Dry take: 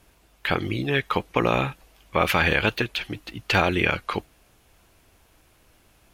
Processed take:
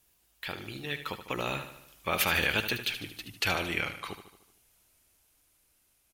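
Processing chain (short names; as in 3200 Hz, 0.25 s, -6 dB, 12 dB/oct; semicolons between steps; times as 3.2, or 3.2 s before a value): Doppler pass-by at 2.62, 17 m/s, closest 19 m; pre-emphasis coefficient 0.8; feedback echo 75 ms, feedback 54%, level -10.5 dB; gain +4 dB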